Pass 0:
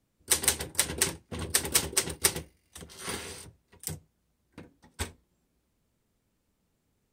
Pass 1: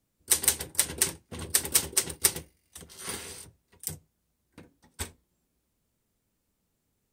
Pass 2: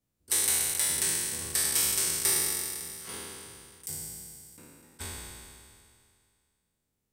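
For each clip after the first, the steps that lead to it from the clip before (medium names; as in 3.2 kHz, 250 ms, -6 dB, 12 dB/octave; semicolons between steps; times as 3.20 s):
treble shelf 6.5 kHz +7.5 dB; trim -3 dB
spectral sustain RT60 2.25 s; trim -8 dB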